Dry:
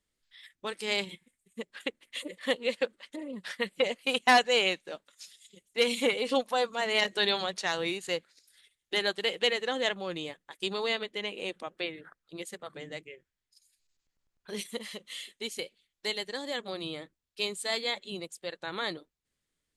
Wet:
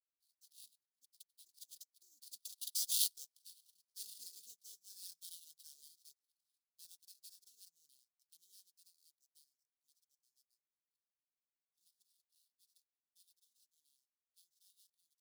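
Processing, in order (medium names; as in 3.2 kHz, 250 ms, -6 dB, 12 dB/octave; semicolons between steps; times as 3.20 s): Doppler pass-by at 4.01 s, 56 m/s, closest 5 m; tempo 1.3×; in parallel at +1 dB: compression, threshold -52 dBFS, peak gain reduction 23 dB; on the sum: sample-rate reducer 6.9 kHz, jitter 20%; inverse Chebyshev high-pass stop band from 2.4 kHz, stop band 40 dB; trim +6.5 dB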